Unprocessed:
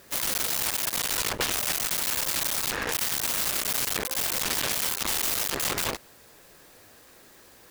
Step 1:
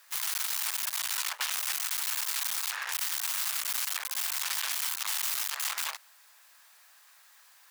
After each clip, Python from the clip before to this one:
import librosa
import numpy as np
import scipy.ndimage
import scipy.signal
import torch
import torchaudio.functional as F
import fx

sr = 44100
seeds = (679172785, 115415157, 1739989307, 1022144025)

y = scipy.signal.sosfilt(scipy.signal.cheby2(4, 60, 260.0, 'highpass', fs=sr, output='sos'), x)
y = y * librosa.db_to_amplitude(-4.0)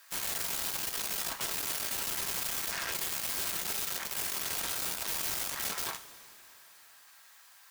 y = (np.mod(10.0 ** (28.0 / 20.0) * x + 1.0, 2.0) - 1.0) / 10.0 ** (28.0 / 20.0)
y = fx.rev_double_slope(y, sr, seeds[0], early_s=0.26, late_s=3.3, knee_db=-18, drr_db=5.5)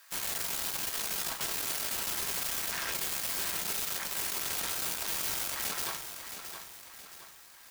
y = fx.echo_feedback(x, sr, ms=669, feedback_pct=44, wet_db=-9.0)